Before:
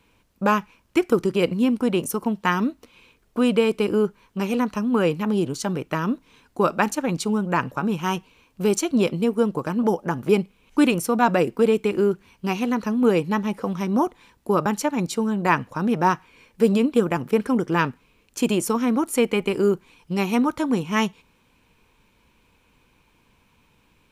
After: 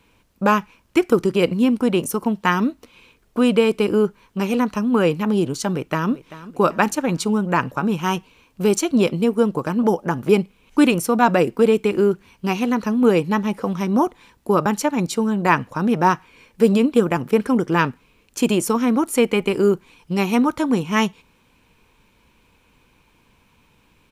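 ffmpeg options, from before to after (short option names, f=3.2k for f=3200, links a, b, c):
-filter_complex "[0:a]asplit=2[a][b];[b]afade=t=in:st=5.71:d=0.01,afade=t=out:st=6.11:d=0.01,aecho=0:1:390|780|1170|1560:0.149624|0.0748118|0.0374059|0.0187029[c];[a][c]amix=inputs=2:normalize=0,deesser=0.35,volume=3dB"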